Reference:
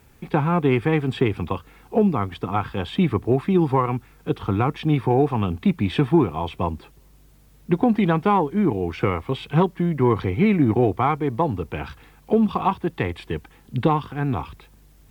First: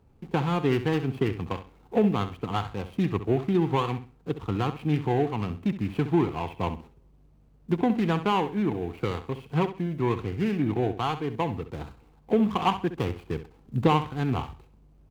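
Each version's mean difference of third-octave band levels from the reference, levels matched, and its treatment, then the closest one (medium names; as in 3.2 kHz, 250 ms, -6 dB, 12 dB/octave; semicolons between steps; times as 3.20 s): 4.5 dB: median filter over 25 samples; dynamic bell 2.3 kHz, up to +7 dB, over -42 dBFS, Q 0.86; gain riding 2 s; feedback delay 66 ms, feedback 25%, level -12 dB; trim -7 dB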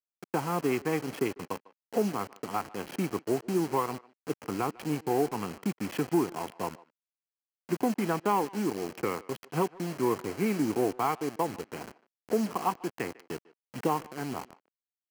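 9.5 dB: send-on-delta sampling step -26 dBFS; high-pass 240 Hz 12 dB/octave; band-stop 3.6 kHz, Q 5.1; speakerphone echo 150 ms, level -21 dB; trim -7 dB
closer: first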